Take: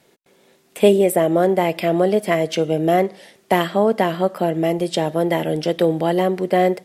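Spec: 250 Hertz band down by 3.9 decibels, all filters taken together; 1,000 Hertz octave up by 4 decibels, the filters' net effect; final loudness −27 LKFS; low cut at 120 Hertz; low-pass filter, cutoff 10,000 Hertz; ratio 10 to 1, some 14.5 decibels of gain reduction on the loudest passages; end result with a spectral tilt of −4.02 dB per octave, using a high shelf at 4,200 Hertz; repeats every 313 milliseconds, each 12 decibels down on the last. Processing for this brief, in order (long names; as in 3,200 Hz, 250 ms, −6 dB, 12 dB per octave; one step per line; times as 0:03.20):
high-pass filter 120 Hz
low-pass filter 10,000 Hz
parametric band 250 Hz −7 dB
parametric band 1,000 Hz +6.5 dB
high-shelf EQ 4,200 Hz +8 dB
downward compressor 10 to 1, threshold −25 dBFS
repeating echo 313 ms, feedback 25%, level −12 dB
level +3 dB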